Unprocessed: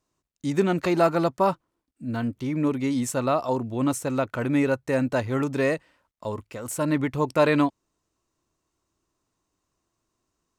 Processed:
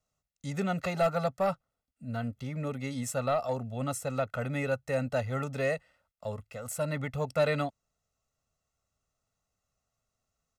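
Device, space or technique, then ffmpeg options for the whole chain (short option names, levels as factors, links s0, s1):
one-band saturation: -filter_complex "[0:a]aecho=1:1:1.5:0.98,acrossover=split=330|2300[s0][s1][s2];[s1]asoftclip=type=tanh:threshold=0.224[s3];[s0][s3][s2]amix=inputs=3:normalize=0,volume=0.398"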